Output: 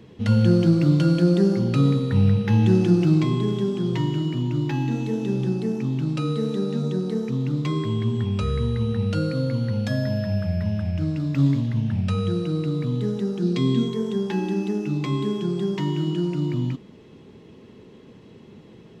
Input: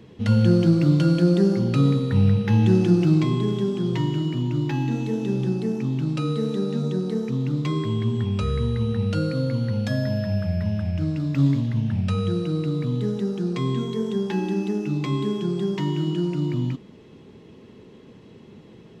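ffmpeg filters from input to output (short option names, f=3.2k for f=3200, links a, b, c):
-filter_complex "[0:a]asettb=1/sr,asplit=3[a][b][c];[a]atrim=end=13.424[d];[b]atrim=start=13.42:end=13.89,asetpts=PTS-STARTPTS,afade=t=in:d=0.004:c=qsin,afade=t=out:st=0.466:d=0.004:c=qsin,equalizer=f=250:t=o:w=1:g=7,equalizer=f=1k:t=o:w=1:g=-5,equalizer=f=4k:t=o:w=1:g=6[e];[c]atrim=start=13.886[f];[d][e]acrossfade=d=0.004:c1=hsin:c2=qsin[g];[g][f]acrossfade=d=0.004:c1=qsin:c2=hsin"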